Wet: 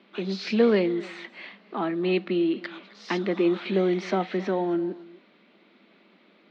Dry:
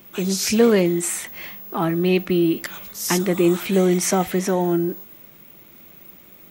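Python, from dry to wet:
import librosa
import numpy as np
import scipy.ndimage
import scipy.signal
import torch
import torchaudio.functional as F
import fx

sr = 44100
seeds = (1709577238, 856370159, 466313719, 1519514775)

y = scipy.signal.sosfilt(scipy.signal.cheby1(4, 1.0, [200.0, 4300.0], 'bandpass', fs=sr, output='sos'), x)
y = y + 10.0 ** (-20.5 / 20.0) * np.pad(y, (int(265 * sr / 1000.0), 0))[:len(y)]
y = y * 10.0 ** (-4.5 / 20.0)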